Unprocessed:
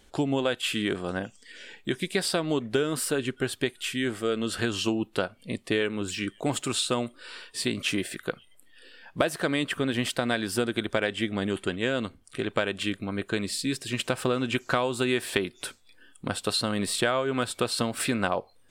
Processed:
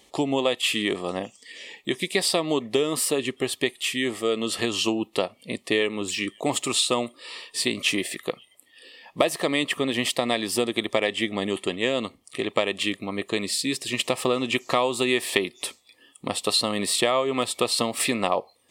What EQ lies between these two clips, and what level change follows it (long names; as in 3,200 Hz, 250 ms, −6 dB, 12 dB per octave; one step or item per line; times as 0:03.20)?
high-pass filter 360 Hz 6 dB per octave
Butterworth band-reject 1,500 Hz, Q 3.2
+5.5 dB